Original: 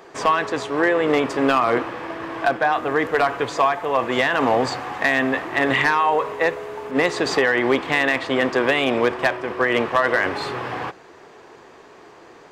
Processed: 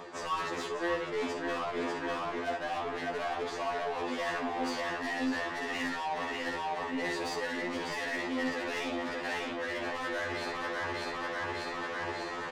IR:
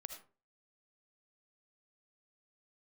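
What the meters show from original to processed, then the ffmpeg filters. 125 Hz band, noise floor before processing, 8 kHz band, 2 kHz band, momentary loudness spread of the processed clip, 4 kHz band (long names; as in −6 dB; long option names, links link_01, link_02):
−15.0 dB, −46 dBFS, −8.0 dB, −13.5 dB, 2 LU, −10.5 dB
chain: -filter_complex "[1:a]atrim=start_sample=2205,afade=type=out:start_time=0.16:duration=0.01,atrim=end_sample=7497,asetrate=61740,aresample=44100[link_01];[0:a][link_01]afir=irnorm=-1:irlink=0,asplit=2[link_02][link_03];[link_03]volume=32.5dB,asoftclip=hard,volume=-32.5dB,volume=-5dB[link_04];[link_02][link_04]amix=inputs=2:normalize=0,lowpass=7900,aecho=1:1:596|1192|1788|2384|2980|3576:0.562|0.276|0.135|0.0662|0.0324|0.0159,areverse,acompressor=threshold=-40dB:ratio=6,areverse,asplit=2[link_05][link_06];[link_06]adelay=20,volume=-14dB[link_07];[link_05][link_07]amix=inputs=2:normalize=0,acontrast=56,asoftclip=type=tanh:threshold=-35.5dB,afftfilt=real='re*2*eq(mod(b,4),0)':imag='im*2*eq(mod(b,4),0)':win_size=2048:overlap=0.75,volume=7dB"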